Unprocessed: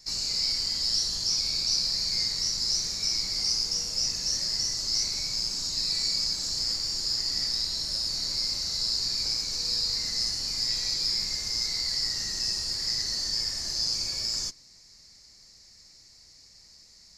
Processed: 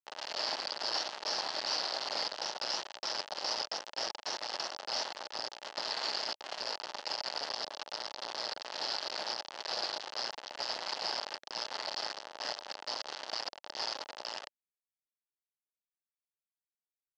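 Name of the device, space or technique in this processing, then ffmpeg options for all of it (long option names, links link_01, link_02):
hand-held game console: -af "acrusher=bits=3:mix=0:aa=0.000001,highpass=430,equalizer=frequency=600:width_type=q:width=4:gain=7,equalizer=frequency=850:width_type=q:width=4:gain=7,equalizer=frequency=2300:width_type=q:width=4:gain=-8,equalizer=frequency=3700:width_type=q:width=4:gain=-6,lowpass=frequency=4200:width=0.5412,lowpass=frequency=4200:width=1.3066"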